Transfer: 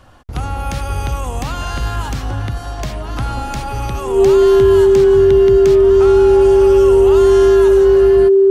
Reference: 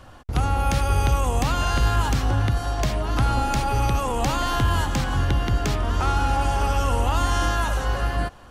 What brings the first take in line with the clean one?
notch filter 390 Hz, Q 30

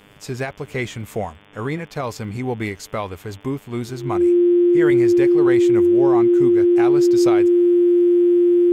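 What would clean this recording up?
click removal
hum removal 101.6 Hz, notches 35
notch filter 350 Hz, Q 30

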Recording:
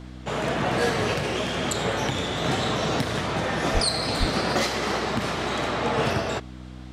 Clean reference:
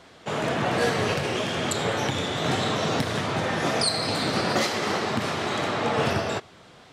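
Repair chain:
hum removal 62.7 Hz, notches 5
high-pass at the plosives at 0:03.73/0:04.19

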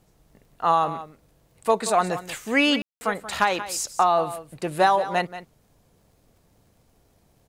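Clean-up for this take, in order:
clipped peaks rebuilt −8 dBFS
click removal
ambience match 0:02.82–0:03.01
echo removal 181 ms −13.5 dB

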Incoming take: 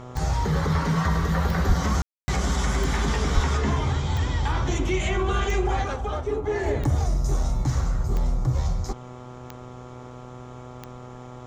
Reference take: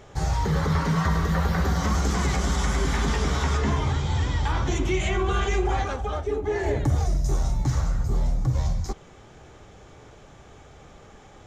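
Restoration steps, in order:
click removal
hum removal 124.5 Hz, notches 11
high-pass at the plosives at 0:01.67/0:03.34
ambience match 0:02.02–0:02.28

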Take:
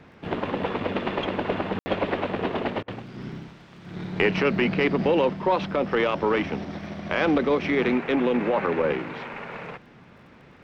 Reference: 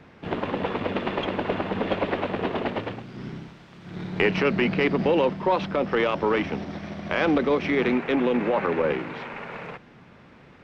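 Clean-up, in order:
click removal
ambience match 0:01.79–0:01.86
repair the gap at 0:02.83, 49 ms

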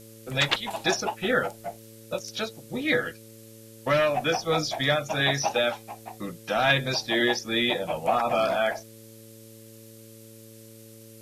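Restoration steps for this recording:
hum removal 111.5 Hz, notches 5
broadband denoise 24 dB, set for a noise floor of −48 dBFS

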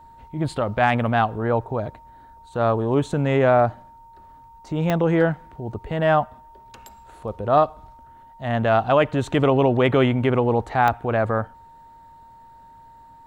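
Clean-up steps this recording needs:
click removal
notch filter 920 Hz, Q 30

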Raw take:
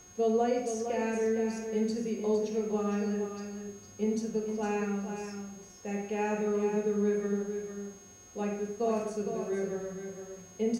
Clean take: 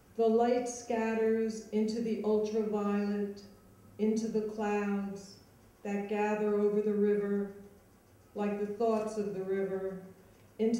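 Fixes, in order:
hum removal 361.7 Hz, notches 22
notch filter 6,500 Hz, Q 30
echo removal 460 ms −8 dB

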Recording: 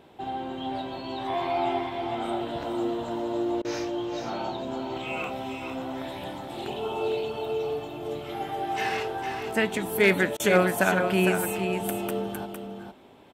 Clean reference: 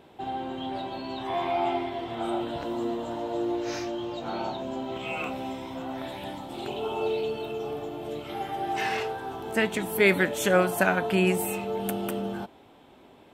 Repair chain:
clipped peaks rebuilt −10.5 dBFS
repair the gap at 0:03.62/0:10.37, 26 ms
echo removal 457 ms −7 dB

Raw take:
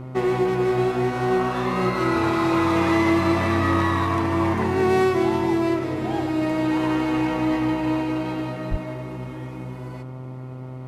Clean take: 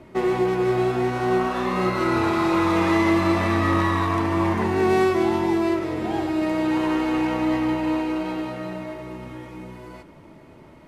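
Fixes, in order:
hum removal 128.5 Hz, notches 11
high-pass at the plosives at 0:08.70

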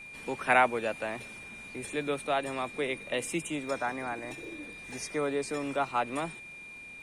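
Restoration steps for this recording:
click removal
notch filter 2,400 Hz, Q 30

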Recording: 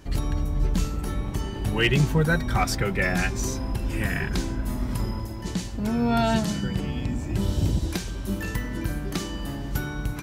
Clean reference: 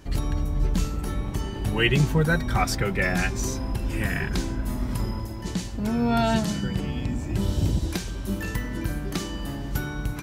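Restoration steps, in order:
clipped peaks rebuilt −12 dBFS

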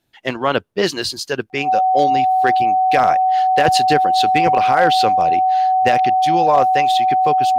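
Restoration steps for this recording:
clipped peaks rebuilt −5 dBFS
notch filter 750 Hz, Q 30

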